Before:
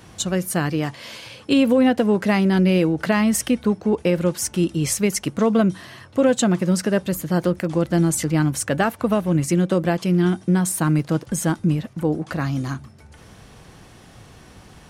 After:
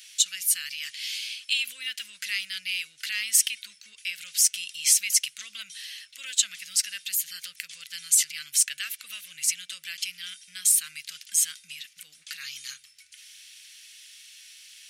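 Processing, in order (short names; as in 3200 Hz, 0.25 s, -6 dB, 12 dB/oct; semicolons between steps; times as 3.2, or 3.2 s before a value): in parallel at +1 dB: limiter -16 dBFS, peak gain reduction 9 dB; on the sum: inverse Chebyshev high-pass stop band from 950 Hz, stop band 50 dB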